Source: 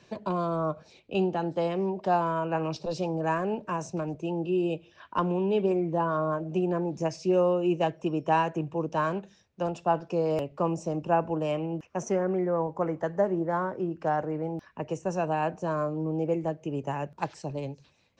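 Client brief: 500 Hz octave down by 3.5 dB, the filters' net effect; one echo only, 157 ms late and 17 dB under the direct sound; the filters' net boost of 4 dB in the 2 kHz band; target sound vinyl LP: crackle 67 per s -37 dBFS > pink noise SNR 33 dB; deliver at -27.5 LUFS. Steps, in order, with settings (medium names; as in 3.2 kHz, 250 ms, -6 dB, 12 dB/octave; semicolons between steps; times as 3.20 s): peaking EQ 500 Hz -5 dB; peaking EQ 2 kHz +6 dB; delay 157 ms -17 dB; crackle 67 per s -37 dBFS; pink noise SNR 33 dB; trim +3.5 dB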